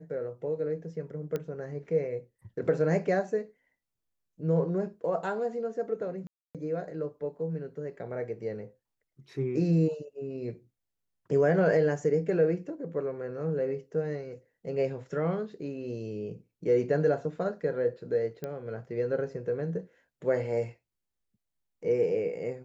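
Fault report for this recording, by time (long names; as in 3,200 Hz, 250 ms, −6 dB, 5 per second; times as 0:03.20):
0:01.36: click −20 dBFS
0:06.27–0:06.55: drop-out 277 ms
0:18.44: click −22 dBFS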